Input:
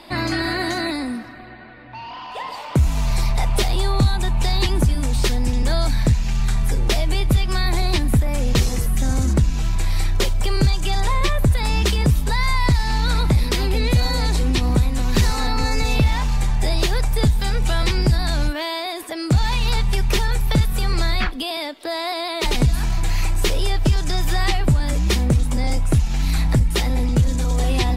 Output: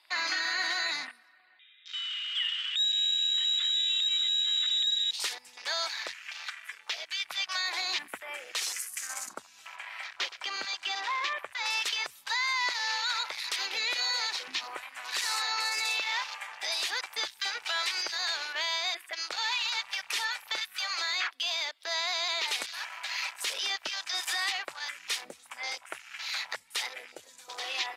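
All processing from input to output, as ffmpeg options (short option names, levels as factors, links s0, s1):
-filter_complex "[0:a]asettb=1/sr,asplit=3[s0][s1][s2];[s0]atrim=end=1.594[s3];[s1]atrim=start=1.59:end=5.11,asetpts=PTS-STARTPTS,afade=t=in:d=0.004:c=qsin,afade=t=out:st=3.516:d=0.004:c=qsin,bandreject=f=2900:w=9.4,acompressor=threshold=0.0708:ratio=12:attack=3.2:release=140:knee=1:detection=peak,lowpass=f=3300:t=q:w=0.5098,lowpass=f=3300:t=q:w=0.6013,lowpass=f=3300:t=q:w=0.9,lowpass=f=3300:t=q:w=2.563,afreqshift=-3900[s4];[s2]atrim=start=5.106[s5];[s3][s4]acrossfade=d=0.004:c1=hsin:c2=qsin[s6];[s6][s5]acrossfade=d=0.004:c1=qsin:c2=hsin,asettb=1/sr,asplit=3[s7][s8][s9];[s7]atrim=end=6.144[s10];[s8]atrim=start=6.14:end=7.2,asetpts=PTS-STARTPTS,afade=t=in:d=0.004:c=qsin,afade=t=out:st=1.056:d=0.004:c=qsin,aecho=1:1:4.6:0.31,atrim=end_sample=46746,acrossover=split=110|560|6900[s11][s12][s13][s14];[s11]acompressor=threshold=0.0501:ratio=3[s15];[s12]acompressor=threshold=0.01:ratio=3[s16];[s13]acompressor=threshold=0.0316:ratio=3[s17];[s14]acompressor=threshold=0.00562:ratio=3[s18];[s15][s16][s17][s18]amix=inputs=4:normalize=0[s19];[s9]atrim=start=7.196[s20];[s10][s19]acrossfade=d=0.004:c1=hsin:c2=qsin[s21];[s21][s20]acrossfade=d=0.004:c1=qsin:c2=hsin,asettb=1/sr,asplit=3[s22][s23][s24];[s22]atrim=end=9.764[s25];[s23]atrim=start=9.76:end=11.66,asetpts=PTS-STARTPTS,afade=t=in:d=0.004:c=qsin,afade=t=out:st=1.896:d=0.004:c=qsin,lowpass=f=3100:p=1,aecho=1:1:119:0.188,atrim=end_sample=83790[s26];[s24]atrim=start=11.656[s27];[s25][s26]acrossfade=d=0.004:c1=hsin:c2=qsin[s28];[s28][s27]acrossfade=d=0.004:c1=qsin:c2=hsin,highpass=1400,afwtdn=0.0126,alimiter=limit=0.0944:level=0:latency=1:release=55"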